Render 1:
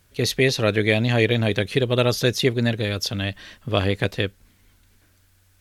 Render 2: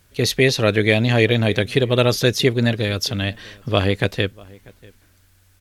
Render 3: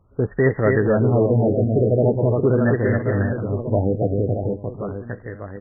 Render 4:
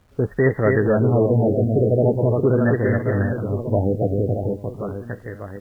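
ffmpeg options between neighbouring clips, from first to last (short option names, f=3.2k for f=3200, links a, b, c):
-filter_complex "[0:a]asplit=2[a][b];[b]adelay=641.4,volume=-24dB,highshelf=f=4k:g=-14.4[c];[a][c]amix=inputs=2:normalize=0,volume=3dB"
-af "aecho=1:1:270|621|1077|1670|2442:0.631|0.398|0.251|0.158|0.1,asoftclip=type=tanh:threshold=-7dB,afftfilt=real='re*lt(b*sr/1024,760*pow(2100/760,0.5+0.5*sin(2*PI*0.42*pts/sr)))':imag='im*lt(b*sr/1024,760*pow(2100/760,0.5+0.5*sin(2*PI*0.42*pts/sr)))':win_size=1024:overlap=0.75"
-af "acrusher=bits=9:mix=0:aa=0.000001"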